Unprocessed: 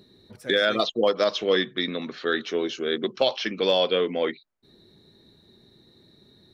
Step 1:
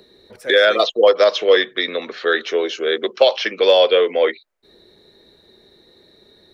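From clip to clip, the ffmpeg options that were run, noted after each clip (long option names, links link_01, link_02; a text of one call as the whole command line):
ffmpeg -i in.wav -filter_complex "[0:a]equalizer=frequency=125:width_type=o:width=1:gain=-11,equalizer=frequency=250:width_type=o:width=1:gain=-5,equalizer=frequency=500:width_type=o:width=1:gain=7,equalizer=frequency=2000:width_type=o:width=1:gain=4,acrossover=split=280|550|1200[link_01][link_02][link_03][link_04];[link_01]acompressor=threshold=-46dB:ratio=6[link_05];[link_05][link_02][link_03][link_04]amix=inputs=4:normalize=0,volume=5dB" out.wav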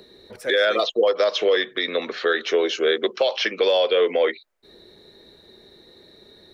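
ffmpeg -i in.wav -af "alimiter=limit=-12dB:level=0:latency=1:release=190,volume=1.5dB" out.wav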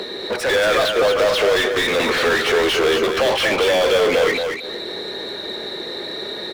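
ffmpeg -i in.wav -filter_complex "[0:a]asplit=2[link_01][link_02];[link_02]acrusher=bits=5:mix=0:aa=0.000001,volume=-11.5dB[link_03];[link_01][link_03]amix=inputs=2:normalize=0,asplit=2[link_04][link_05];[link_05]highpass=frequency=720:poles=1,volume=36dB,asoftclip=type=tanh:threshold=-8.5dB[link_06];[link_04][link_06]amix=inputs=2:normalize=0,lowpass=frequency=2600:poles=1,volume=-6dB,aecho=1:1:228|456|684:0.501|0.0952|0.0181,volume=-3dB" out.wav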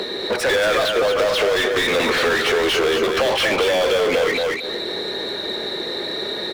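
ffmpeg -i in.wav -af "acompressor=threshold=-19dB:ratio=3,volume=2.5dB" out.wav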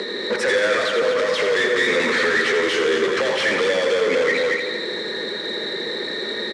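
ffmpeg -i in.wav -af "asoftclip=type=tanh:threshold=-14dB,highpass=140,equalizer=frequency=220:width_type=q:width=4:gain=5,equalizer=frequency=480:width_type=q:width=4:gain=4,equalizer=frequency=720:width_type=q:width=4:gain=-8,equalizer=frequency=1900:width_type=q:width=4:gain=8,equalizer=frequency=2800:width_type=q:width=4:gain=-4,lowpass=frequency=8800:width=0.5412,lowpass=frequency=8800:width=1.3066,aecho=1:1:84|168|252|336|420|504|588:0.447|0.246|0.135|0.0743|0.0409|0.0225|0.0124,volume=-2dB" out.wav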